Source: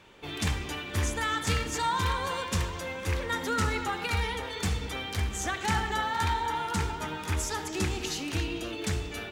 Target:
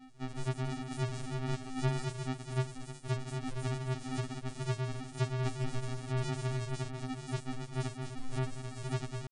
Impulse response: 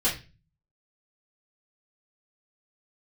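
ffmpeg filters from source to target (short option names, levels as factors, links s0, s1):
-af "acompressor=threshold=0.0355:ratio=6,aresample=11025,acrusher=samples=39:mix=1:aa=0.000001,aresample=44100,asetrate=80880,aresample=44100,atempo=0.545254,afftfilt=real='re*2.45*eq(mod(b,6),0)':imag='im*2.45*eq(mod(b,6),0)':win_size=2048:overlap=0.75"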